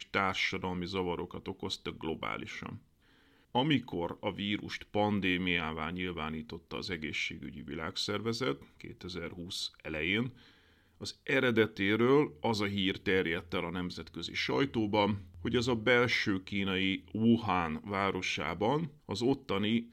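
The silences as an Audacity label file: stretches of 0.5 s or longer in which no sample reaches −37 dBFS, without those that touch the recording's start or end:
2.740000	3.550000	silence
10.280000	11.020000	silence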